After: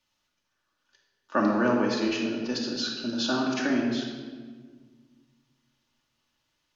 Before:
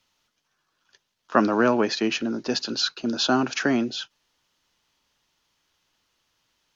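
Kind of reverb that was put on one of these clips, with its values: shoebox room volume 1700 m³, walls mixed, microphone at 2.5 m; gain -8.5 dB

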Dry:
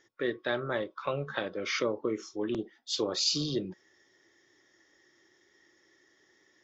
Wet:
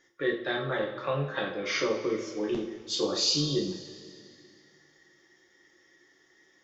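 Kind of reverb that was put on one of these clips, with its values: two-slope reverb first 0.41 s, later 2.5 s, from -15 dB, DRR -2.5 dB; gain -2 dB

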